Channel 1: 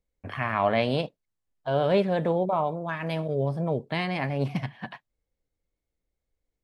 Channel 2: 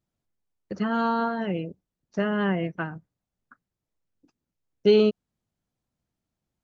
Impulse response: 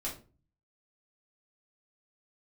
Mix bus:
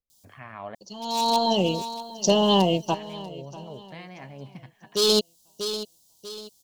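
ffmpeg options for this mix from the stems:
-filter_complex "[0:a]volume=-14dB,asplit=3[link_01][link_02][link_03];[link_01]atrim=end=0.75,asetpts=PTS-STARTPTS,afade=type=out:start_time=0.746:duration=0.004:curve=hsin[link_04];[link_02]atrim=start=0.75:end=2.94,asetpts=PTS-STARTPTS,volume=0[link_05];[link_03]atrim=start=2.94,asetpts=PTS-STARTPTS,afade=type=in:duration=0.004:curve=hsin[link_06];[link_04][link_05][link_06]concat=n=3:v=0:a=1,asplit=2[link_07][link_08];[1:a]firequalizer=gain_entry='entry(150,0);entry(950,11);entry(1400,-20);entry(3100,1)':delay=0.05:min_phase=1,aeval=exprs='0.237*(cos(1*acos(clip(val(0)/0.237,-1,1)))-cos(1*PI/2))+0.00335*(cos(4*acos(clip(val(0)/0.237,-1,1)))-cos(4*PI/2))':channel_layout=same,aexciter=amount=9.9:drive=9.4:freq=3200,adelay=100,volume=2.5dB,asplit=2[link_09][link_10];[link_10]volume=-18.5dB[link_11];[link_08]apad=whole_len=301509[link_12];[link_09][link_12]sidechaincompress=threshold=-59dB:ratio=16:attack=16:release=450[link_13];[link_11]aecho=0:1:641|1282|1923|2564|3205:1|0.36|0.13|0.0467|0.0168[link_14];[link_07][link_13][link_14]amix=inputs=3:normalize=0"

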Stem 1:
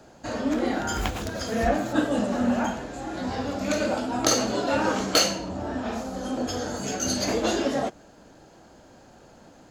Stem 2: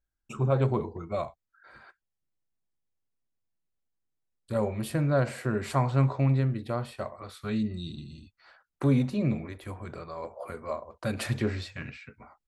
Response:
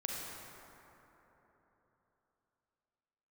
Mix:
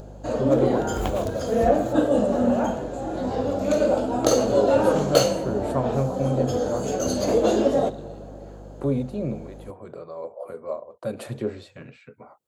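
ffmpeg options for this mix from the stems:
-filter_complex "[0:a]aeval=exprs='val(0)+0.00794*(sin(2*PI*50*n/s)+sin(2*PI*2*50*n/s)/2+sin(2*PI*3*50*n/s)/3+sin(2*PI*4*50*n/s)/4+sin(2*PI*5*50*n/s)/5)':channel_layout=same,volume=-2dB,asplit=2[link_01][link_02];[link_02]volume=-16.5dB[link_03];[1:a]highpass=160,volume=-3.5dB[link_04];[2:a]atrim=start_sample=2205[link_05];[link_03][link_05]afir=irnorm=-1:irlink=0[link_06];[link_01][link_04][link_06]amix=inputs=3:normalize=0,equalizer=frequency=5200:width=2.6:gain=-6.5,acompressor=mode=upward:threshold=-41dB:ratio=2.5,equalizer=frequency=125:width_type=o:width=1:gain=5,equalizer=frequency=500:width_type=o:width=1:gain=10,equalizer=frequency=2000:width_type=o:width=1:gain=-7"

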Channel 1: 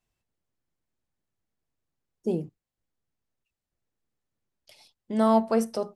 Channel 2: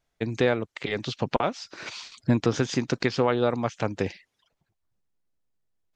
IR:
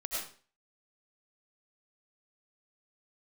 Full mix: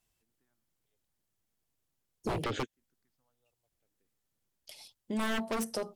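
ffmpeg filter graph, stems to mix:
-filter_complex "[0:a]aemphasis=mode=production:type=cd,volume=0dB,asplit=2[link_01][link_02];[1:a]asplit=2[link_03][link_04];[link_04]afreqshift=-0.78[link_05];[link_03][link_05]amix=inputs=2:normalize=1,volume=2.5dB,asplit=3[link_06][link_07][link_08];[link_06]atrim=end=1.05,asetpts=PTS-STARTPTS,afade=type=out:start_time=1.046:duration=0.004:curve=hsin[link_09];[link_07]atrim=start=1.05:end=2.14,asetpts=PTS-STARTPTS,volume=0[link_10];[link_08]atrim=start=2.14,asetpts=PTS-STARTPTS,afade=type=in:duration=0.004:curve=hsin[link_11];[link_09][link_10][link_11]concat=n=3:v=0:a=1[link_12];[link_02]apad=whole_len=262665[link_13];[link_12][link_13]sidechaingate=range=-57dB:threshold=-57dB:ratio=16:detection=peak[link_14];[link_01][link_14]amix=inputs=2:normalize=0,equalizer=frequency=3200:width_type=o:width=0.21:gain=2.5,aeval=exprs='0.0841*(abs(mod(val(0)/0.0841+3,4)-2)-1)':channel_layout=same,acompressor=threshold=-34dB:ratio=2"

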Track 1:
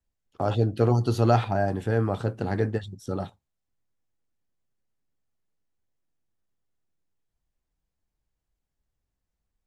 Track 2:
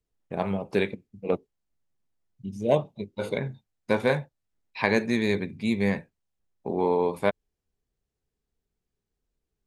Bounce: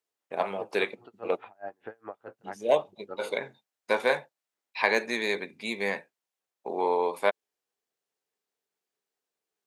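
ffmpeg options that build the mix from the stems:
ffmpeg -i stem1.wav -i stem2.wav -filter_complex "[0:a]lowpass=frequency=2600:width=0.5412,lowpass=frequency=2600:width=1.3066,acompressor=threshold=-24dB:ratio=6,aeval=exprs='val(0)*pow(10,-35*(0.5-0.5*cos(2*PI*4.8*n/s))/20)':channel_layout=same,volume=-0.5dB[link_01];[1:a]deesser=0.65,volume=2dB[link_02];[link_01][link_02]amix=inputs=2:normalize=0,highpass=530" out.wav

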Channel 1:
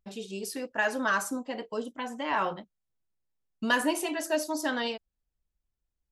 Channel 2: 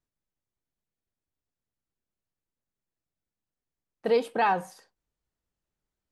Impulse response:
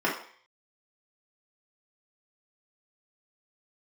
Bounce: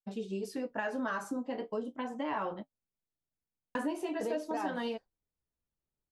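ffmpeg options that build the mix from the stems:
-filter_complex "[0:a]highshelf=frequency=7800:gain=-8.5,agate=range=-33dB:threshold=-42dB:ratio=3:detection=peak,volume=1.5dB,asplit=3[link_01][link_02][link_03];[link_01]atrim=end=2.63,asetpts=PTS-STARTPTS,afade=type=out:start_time=2.626:duration=0.004:curve=hsin[link_04];[link_02]atrim=start=2.63:end=3.75,asetpts=PTS-STARTPTS,volume=0[link_05];[link_03]atrim=start=3.75,asetpts=PTS-STARTPTS,afade=type=in:duration=0.004:curve=hsin[link_06];[link_04][link_05][link_06]concat=n=3:v=0:a=1[link_07];[1:a]adelay=150,volume=-5dB[link_08];[link_07][link_08]amix=inputs=2:normalize=0,tiltshelf=frequency=1200:gain=5,flanger=delay=9:depth=8.2:regen=-42:speed=0.4:shape=sinusoidal,acompressor=threshold=-32dB:ratio=4"

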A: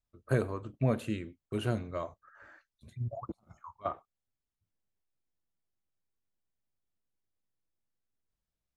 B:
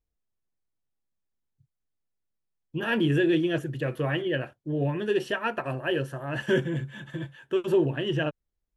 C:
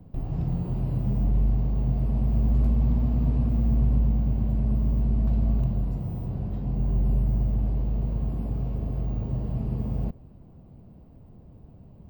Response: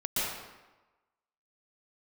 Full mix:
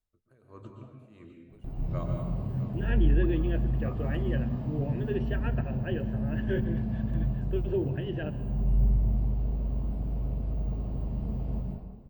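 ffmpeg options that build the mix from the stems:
-filter_complex "[0:a]acompressor=threshold=-31dB:ratio=3,aeval=exprs='val(0)*pow(10,-29*(0.5-0.5*cos(2*PI*1.5*n/s))/20)':channel_layout=same,volume=-4.5dB,asplit=3[link_01][link_02][link_03];[link_02]volume=-7dB[link_04];[link_03]volume=-11dB[link_05];[1:a]lowpass=2200,equalizer=frequency=1100:width_type=o:width=0.46:gain=-14,volume=-7.5dB,asplit=2[link_06][link_07];[link_07]volume=-23.5dB[link_08];[2:a]adelay=1500,volume=-11.5dB,asplit=2[link_09][link_10];[link_10]volume=-3.5dB[link_11];[3:a]atrim=start_sample=2205[link_12];[link_04][link_08][link_11]amix=inputs=3:normalize=0[link_13];[link_13][link_12]afir=irnorm=-1:irlink=0[link_14];[link_05]aecho=0:1:656:1[link_15];[link_01][link_06][link_09][link_14][link_15]amix=inputs=5:normalize=0"

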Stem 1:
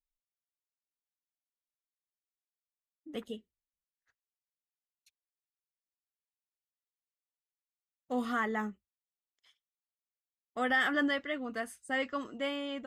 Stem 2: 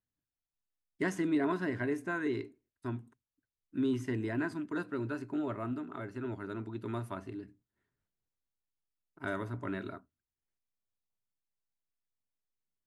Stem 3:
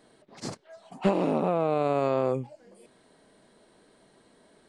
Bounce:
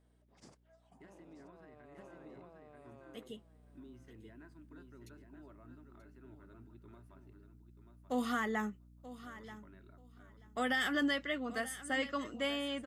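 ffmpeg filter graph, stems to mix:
ffmpeg -i stem1.wav -i stem2.wav -i stem3.wav -filter_complex "[0:a]highshelf=frequency=3500:gain=7,acrossover=split=380|3000[link_01][link_02][link_03];[link_02]acompressor=threshold=-32dB:ratio=6[link_04];[link_01][link_04][link_03]amix=inputs=3:normalize=0,aeval=exprs='val(0)+0.00112*(sin(2*PI*60*n/s)+sin(2*PI*2*60*n/s)/2+sin(2*PI*3*60*n/s)/3+sin(2*PI*4*60*n/s)/4+sin(2*PI*5*60*n/s)/5)':channel_layout=same,volume=-1dB,afade=type=in:start_time=3.21:duration=0.52:silence=0.334965,asplit=2[link_05][link_06];[link_06]volume=-15.5dB[link_07];[1:a]volume=-20dB,asplit=3[link_08][link_09][link_10];[link_09]volume=-9dB[link_11];[2:a]bandreject=frequency=4200:width=8.4,volume=-19dB,asplit=2[link_12][link_13];[link_13]volume=-14dB[link_14];[link_10]apad=whole_len=206449[link_15];[link_12][link_15]sidechaincompress=threshold=-56dB:ratio=8:attack=16:release=1400[link_16];[link_08][link_16]amix=inputs=2:normalize=0,alimiter=level_in=24dB:limit=-24dB:level=0:latency=1:release=153,volume=-24dB,volume=0dB[link_17];[link_07][link_11][link_14]amix=inputs=3:normalize=0,aecho=0:1:933|1866|2799:1|0.16|0.0256[link_18];[link_05][link_17][link_18]amix=inputs=3:normalize=0" out.wav

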